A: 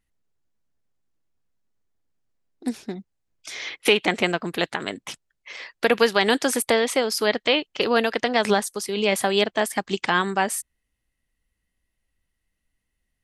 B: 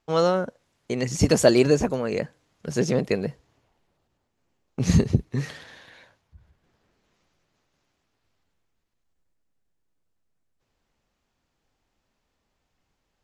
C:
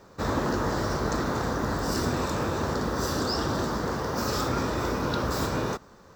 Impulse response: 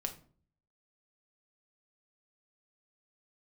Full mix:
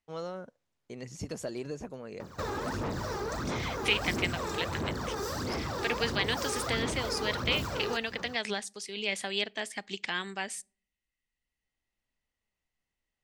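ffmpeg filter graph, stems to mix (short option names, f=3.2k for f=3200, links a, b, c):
-filter_complex "[0:a]lowpass=f=8.8k:w=0.5412,lowpass=f=8.8k:w=1.3066,highshelf=f=1.6k:t=q:w=1.5:g=7,volume=-16dB,asplit=3[a][b][c];[b]volume=-17.5dB[d];[1:a]volume=-16dB[e];[2:a]highpass=62,aphaser=in_gain=1:out_gain=1:delay=2.5:decay=0.68:speed=1.5:type=sinusoidal,adelay=2200,volume=0.5dB[f];[c]apad=whole_len=583692[g];[e][g]sidechaincompress=threshold=-44dB:ratio=8:attack=5.2:release=1180[h];[h][f]amix=inputs=2:normalize=0,asoftclip=type=tanh:threshold=-20.5dB,acompressor=threshold=-33dB:ratio=5,volume=0dB[i];[3:a]atrim=start_sample=2205[j];[d][j]afir=irnorm=-1:irlink=0[k];[a][i][k]amix=inputs=3:normalize=0"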